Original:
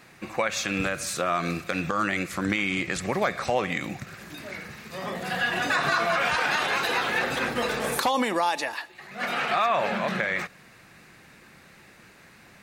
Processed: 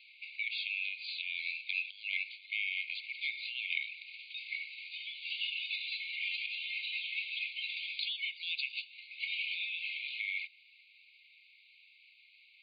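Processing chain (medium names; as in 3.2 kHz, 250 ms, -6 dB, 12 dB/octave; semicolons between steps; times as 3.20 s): FFT band-pass 2.1–4.8 kHz; 6.46–7.77 s: tilt EQ -2.5 dB/octave; gain riding within 5 dB 0.5 s; static phaser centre 2.9 kHz, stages 4; trim -1.5 dB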